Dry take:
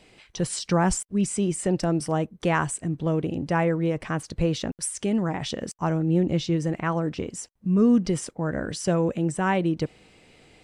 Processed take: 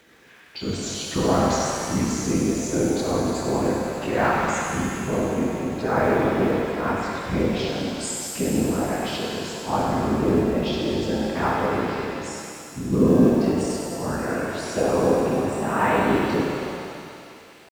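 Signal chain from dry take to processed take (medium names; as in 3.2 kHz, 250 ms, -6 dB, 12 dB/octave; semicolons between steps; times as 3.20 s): pitch bend over the whole clip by -4.5 st ending unshifted; crackle 560 per s -47 dBFS; treble shelf 4.1 kHz -7.5 dB; tempo 0.6×; whisper effect; high-pass 93 Hz 6 dB/octave; bass shelf 210 Hz -5 dB; hum notches 60/120 Hz; in parallel at -10.5 dB: short-mantissa float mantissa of 2-bit; on the sum: thinning echo 98 ms, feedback 85%, high-pass 450 Hz, level -8 dB; pitch-shifted reverb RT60 2 s, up +7 st, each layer -8 dB, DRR -1 dB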